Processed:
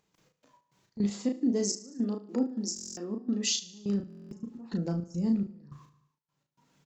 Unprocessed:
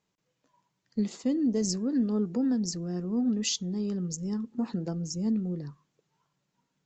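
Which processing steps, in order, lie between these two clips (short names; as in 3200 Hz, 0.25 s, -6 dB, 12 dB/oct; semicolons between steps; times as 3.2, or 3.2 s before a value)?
gate -58 dBFS, range -37 dB; step gate ".x.x.x.xx.xx." 105 bpm -24 dB; 1.06–3.51 brick-wall FIR high-pass 200 Hz; feedback echo 74 ms, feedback 44%, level -16.5 dB; upward compressor, threshold -33 dBFS; doubler 35 ms -4.5 dB; stuck buffer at 2.74/4.08, samples 1024, times 9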